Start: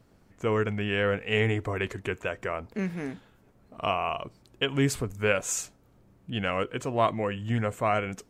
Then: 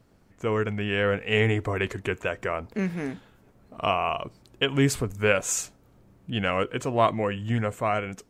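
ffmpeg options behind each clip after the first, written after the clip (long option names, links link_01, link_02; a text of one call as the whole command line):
ffmpeg -i in.wav -af "dynaudnorm=framelen=180:gausssize=11:maxgain=3dB" out.wav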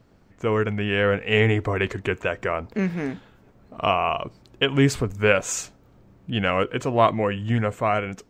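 ffmpeg -i in.wav -af "equalizer=frequency=11000:width_type=o:width=0.84:gain=-11.5,volume=3.5dB" out.wav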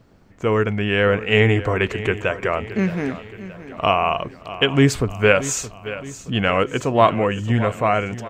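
ffmpeg -i in.wav -af "aecho=1:1:622|1244|1866|2488|3110:0.178|0.0907|0.0463|0.0236|0.012,volume=3.5dB" out.wav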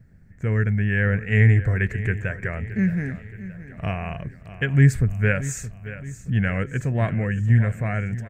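ffmpeg -i in.wav -af "firequalizer=gain_entry='entry(150,0);entry(290,-15);entry(590,-17);entry(1100,-25);entry(1700,-3);entry(3000,-24);entry(8200,-10)':delay=0.05:min_phase=1,volume=4.5dB" out.wav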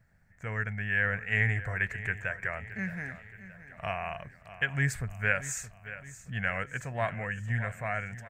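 ffmpeg -i in.wav -af "lowshelf=frequency=520:width_type=q:width=1.5:gain=-11.5,volume=-3dB" out.wav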